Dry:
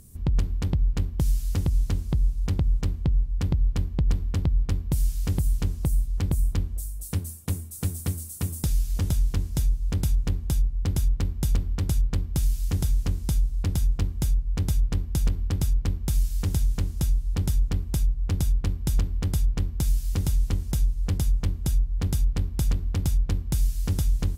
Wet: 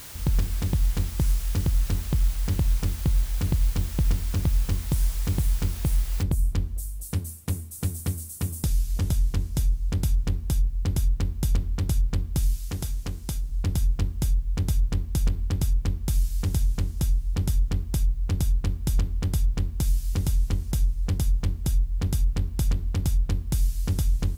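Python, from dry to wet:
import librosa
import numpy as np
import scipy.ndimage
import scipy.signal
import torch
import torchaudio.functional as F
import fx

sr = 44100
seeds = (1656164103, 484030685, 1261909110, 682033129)

y = fx.noise_floor_step(x, sr, seeds[0], at_s=6.23, before_db=-42, after_db=-67, tilt_db=0.0)
y = fx.low_shelf(y, sr, hz=230.0, db=-7.0, at=(12.57, 13.49))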